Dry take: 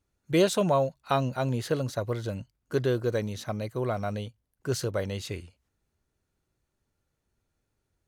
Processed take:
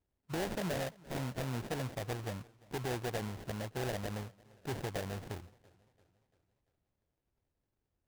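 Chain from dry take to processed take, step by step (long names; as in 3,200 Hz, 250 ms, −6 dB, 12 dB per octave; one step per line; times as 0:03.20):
sample-rate reduction 1,200 Hz, jitter 20%
brickwall limiter −23 dBFS, peak gain reduction 9.5 dB
feedback echo with a swinging delay time 344 ms, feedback 49%, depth 69 cents, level −24 dB
level −7 dB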